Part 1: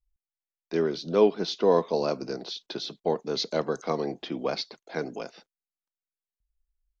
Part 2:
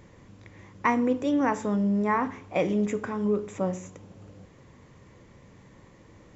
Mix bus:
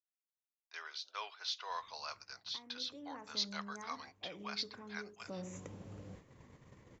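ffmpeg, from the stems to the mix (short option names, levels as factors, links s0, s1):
-filter_complex "[0:a]highpass=f=1100:w=0.5412,highpass=f=1100:w=1.3066,volume=0.531[s0];[1:a]acompressor=threshold=0.0178:ratio=4,adelay=1700,volume=0.794,afade=t=in:st=2.65:d=0.5:silence=0.398107,afade=t=in:st=5.27:d=0.21:silence=0.266073[s1];[s0][s1]amix=inputs=2:normalize=0,agate=range=0.355:threshold=0.00224:ratio=16:detection=peak"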